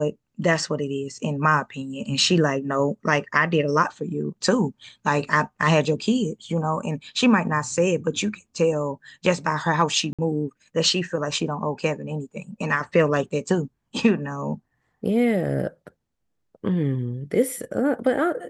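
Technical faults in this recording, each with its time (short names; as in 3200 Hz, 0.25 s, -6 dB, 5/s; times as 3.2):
10.13–10.19 gap 56 ms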